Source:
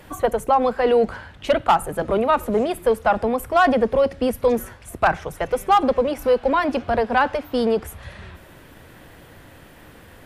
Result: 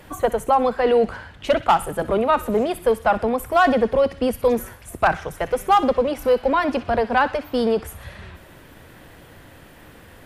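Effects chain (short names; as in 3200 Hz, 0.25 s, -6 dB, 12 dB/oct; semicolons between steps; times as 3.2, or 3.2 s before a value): thin delay 62 ms, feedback 52%, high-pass 1600 Hz, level -13 dB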